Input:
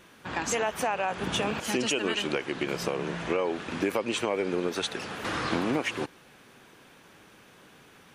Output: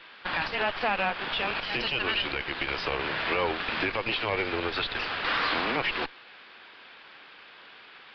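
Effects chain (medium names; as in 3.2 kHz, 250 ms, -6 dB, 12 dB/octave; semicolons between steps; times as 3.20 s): high-pass 520 Hz 6 dB/octave; tilt EQ +4 dB/octave; gain riding within 4 dB 2 s; peak limiter -18.5 dBFS, peak gain reduction 11 dB; frequency shift -18 Hz; Chebyshev shaper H 4 -13 dB, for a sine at -22 dBFS; distance through air 220 m; resampled via 11.025 kHz; trim +5 dB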